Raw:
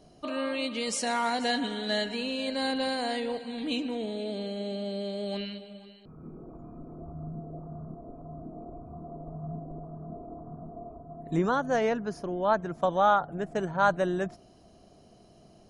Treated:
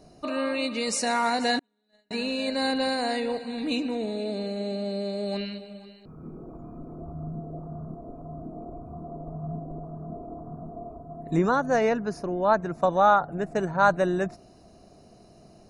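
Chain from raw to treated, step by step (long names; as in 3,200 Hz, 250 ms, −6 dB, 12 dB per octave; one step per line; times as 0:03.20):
0:01.59–0:02.11: noise gate −22 dBFS, range −45 dB
Butterworth band-reject 3,200 Hz, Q 5.3
level +3.5 dB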